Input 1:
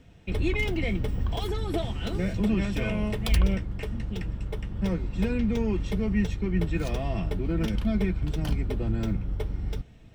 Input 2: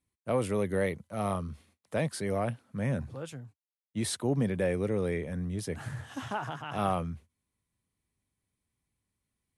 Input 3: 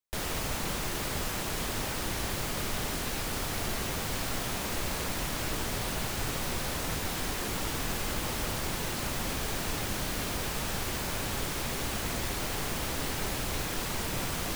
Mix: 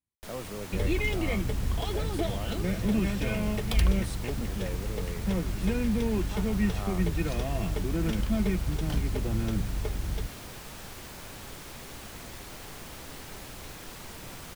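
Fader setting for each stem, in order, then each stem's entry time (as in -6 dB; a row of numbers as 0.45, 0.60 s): -1.5, -10.0, -10.0 dB; 0.45, 0.00, 0.10 s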